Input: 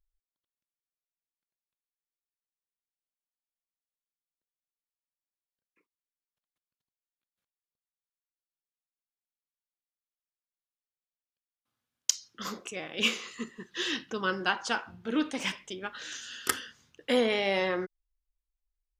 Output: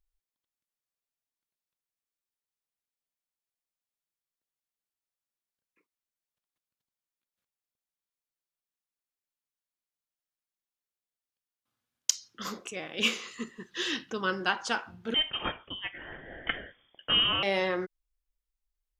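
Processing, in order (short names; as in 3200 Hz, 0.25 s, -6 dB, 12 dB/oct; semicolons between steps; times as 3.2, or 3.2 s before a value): 15.14–17.43 inverted band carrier 3400 Hz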